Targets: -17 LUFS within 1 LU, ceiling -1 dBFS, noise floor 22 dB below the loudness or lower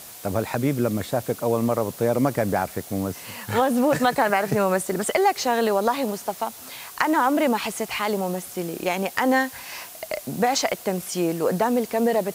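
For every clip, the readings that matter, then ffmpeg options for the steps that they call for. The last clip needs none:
noise floor -41 dBFS; noise floor target -46 dBFS; loudness -23.5 LUFS; peak -4.0 dBFS; loudness target -17.0 LUFS
-> -af "afftdn=nr=6:nf=-41"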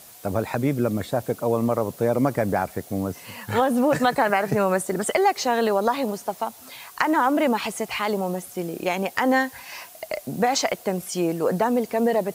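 noise floor -46 dBFS; loudness -23.5 LUFS; peak -4.0 dBFS; loudness target -17.0 LUFS
-> -af "volume=6.5dB,alimiter=limit=-1dB:level=0:latency=1"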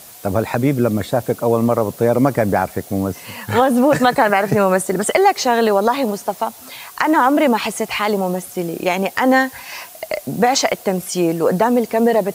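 loudness -17.0 LUFS; peak -1.0 dBFS; noise floor -39 dBFS

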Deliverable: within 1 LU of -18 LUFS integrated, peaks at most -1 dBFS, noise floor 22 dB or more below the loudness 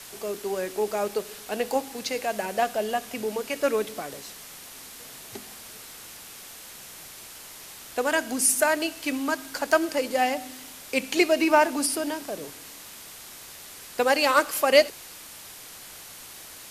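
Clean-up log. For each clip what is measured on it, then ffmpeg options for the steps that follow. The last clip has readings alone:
noise floor -44 dBFS; noise floor target -47 dBFS; loudness -25.0 LUFS; peak -3.0 dBFS; loudness target -18.0 LUFS
-> -af "afftdn=nr=6:nf=-44"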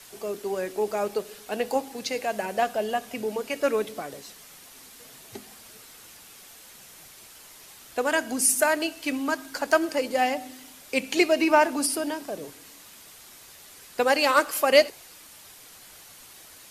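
noise floor -49 dBFS; loudness -25.0 LUFS; peak -3.0 dBFS; loudness target -18.0 LUFS
-> -af "volume=7dB,alimiter=limit=-1dB:level=0:latency=1"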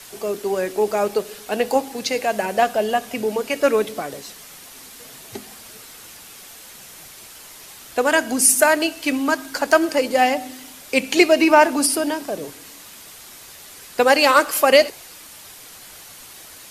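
loudness -18.5 LUFS; peak -1.0 dBFS; noise floor -42 dBFS

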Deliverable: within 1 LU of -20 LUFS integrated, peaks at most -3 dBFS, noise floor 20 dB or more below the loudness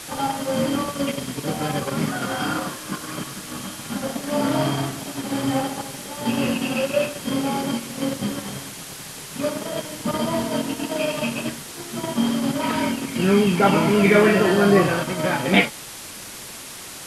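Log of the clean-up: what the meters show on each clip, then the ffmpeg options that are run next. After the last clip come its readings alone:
noise floor -37 dBFS; noise floor target -43 dBFS; loudness -22.5 LUFS; peak -2.5 dBFS; loudness target -20.0 LUFS
-> -af "afftdn=nr=6:nf=-37"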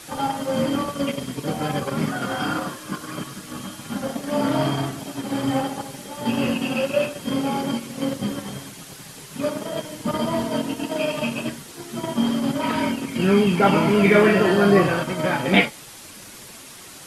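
noise floor -42 dBFS; noise floor target -43 dBFS
-> -af "afftdn=nr=6:nf=-42"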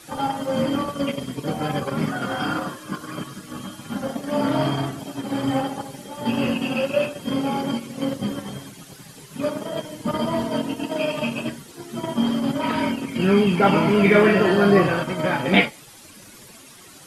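noise floor -45 dBFS; loudness -22.5 LUFS; peak -2.5 dBFS; loudness target -20.0 LUFS
-> -af "volume=2.5dB,alimiter=limit=-3dB:level=0:latency=1"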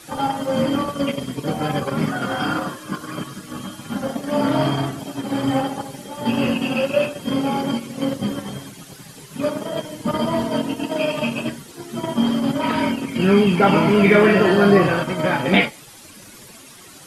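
loudness -20.5 LUFS; peak -3.0 dBFS; noise floor -43 dBFS

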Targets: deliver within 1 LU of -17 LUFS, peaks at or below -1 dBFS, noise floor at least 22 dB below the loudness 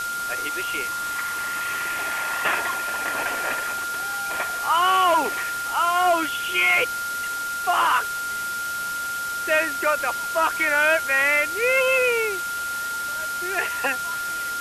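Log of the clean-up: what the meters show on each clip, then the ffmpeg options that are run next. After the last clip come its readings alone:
steady tone 1400 Hz; tone level -26 dBFS; noise floor -28 dBFS; noise floor target -45 dBFS; loudness -22.5 LUFS; peak -9.5 dBFS; loudness target -17.0 LUFS
-> -af "bandreject=f=1.4k:w=30"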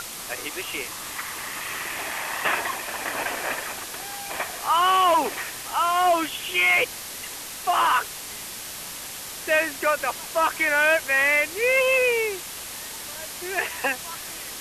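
steady tone none; noise floor -36 dBFS; noise floor target -46 dBFS
-> -af "afftdn=nr=10:nf=-36"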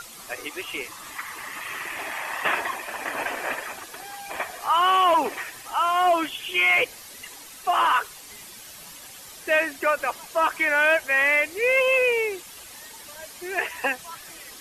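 noise floor -43 dBFS; noise floor target -45 dBFS
-> -af "afftdn=nr=6:nf=-43"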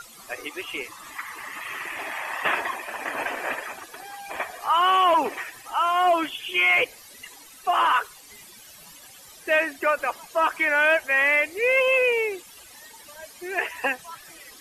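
noise floor -48 dBFS; loudness -23.0 LUFS; peak -11.0 dBFS; loudness target -17.0 LUFS
-> -af "volume=6dB"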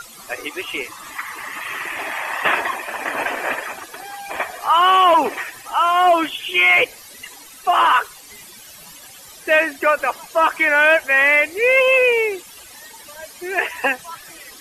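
loudness -17.0 LUFS; peak -5.0 dBFS; noise floor -42 dBFS

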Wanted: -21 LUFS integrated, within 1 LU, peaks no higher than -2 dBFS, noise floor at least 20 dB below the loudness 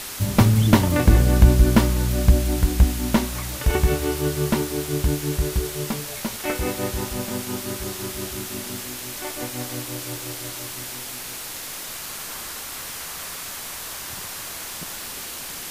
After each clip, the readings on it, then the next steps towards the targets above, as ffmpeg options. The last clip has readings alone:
noise floor -34 dBFS; noise floor target -44 dBFS; loudness -23.5 LUFS; peak -2.0 dBFS; loudness target -21.0 LUFS
-> -af "afftdn=nr=10:nf=-34"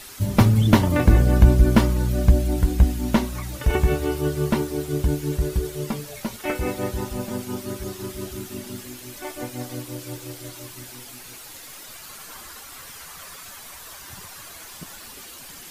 noise floor -41 dBFS; noise floor target -43 dBFS
-> -af "afftdn=nr=6:nf=-41"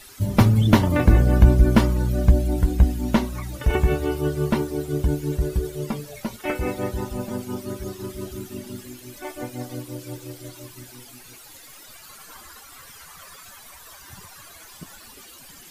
noise floor -45 dBFS; loudness -22.0 LUFS; peak -2.0 dBFS; loudness target -21.0 LUFS
-> -af "volume=1dB,alimiter=limit=-2dB:level=0:latency=1"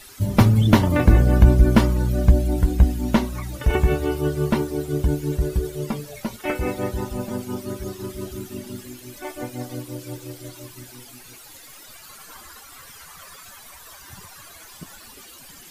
loudness -21.5 LUFS; peak -2.0 dBFS; noise floor -44 dBFS

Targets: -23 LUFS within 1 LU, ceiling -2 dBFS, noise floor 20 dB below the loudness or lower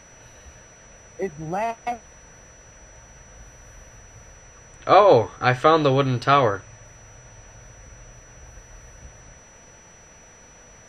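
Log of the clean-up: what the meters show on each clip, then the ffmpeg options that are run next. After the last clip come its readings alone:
steady tone 5900 Hz; tone level -50 dBFS; loudness -19.5 LUFS; peak -1.5 dBFS; loudness target -23.0 LUFS
-> -af "bandreject=f=5.9k:w=30"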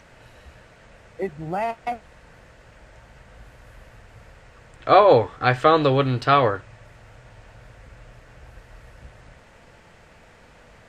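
steady tone none; loudness -19.5 LUFS; peak -1.5 dBFS; loudness target -23.0 LUFS
-> -af "volume=-3.5dB"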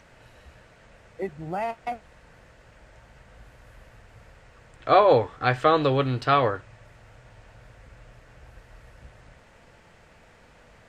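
loudness -23.0 LUFS; peak -5.0 dBFS; noise floor -55 dBFS

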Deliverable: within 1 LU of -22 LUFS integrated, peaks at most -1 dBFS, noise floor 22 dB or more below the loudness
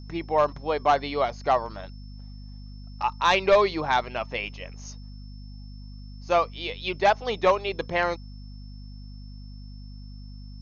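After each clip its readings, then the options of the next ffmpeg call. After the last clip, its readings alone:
hum 50 Hz; harmonics up to 250 Hz; hum level -38 dBFS; steady tone 5300 Hz; tone level -55 dBFS; loudness -25.0 LUFS; peak -11.0 dBFS; loudness target -22.0 LUFS
-> -af "bandreject=f=50:t=h:w=4,bandreject=f=100:t=h:w=4,bandreject=f=150:t=h:w=4,bandreject=f=200:t=h:w=4,bandreject=f=250:t=h:w=4"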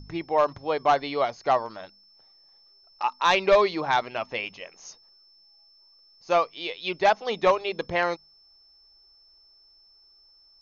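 hum none; steady tone 5300 Hz; tone level -55 dBFS
-> -af "bandreject=f=5.3k:w=30"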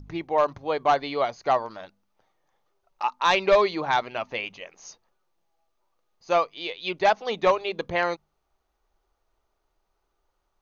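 steady tone none; loudness -25.0 LUFS; peak -11.5 dBFS; loudness target -22.0 LUFS
-> -af "volume=3dB"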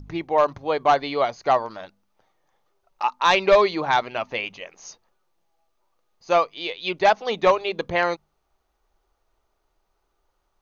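loudness -22.0 LUFS; peak -8.5 dBFS; noise floor -73 dBFS

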